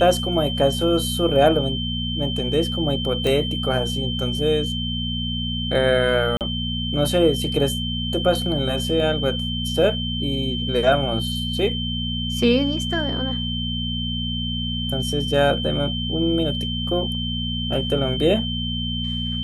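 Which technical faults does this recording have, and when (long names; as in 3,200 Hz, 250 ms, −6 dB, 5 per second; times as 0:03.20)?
mains hum 60 Hz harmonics 4 −27 dBFS
whistle 3,100 Hz −27 dBFS
0:03.27: click −11 dBFS
0:06.37–0:06.41: drop-out 38 ms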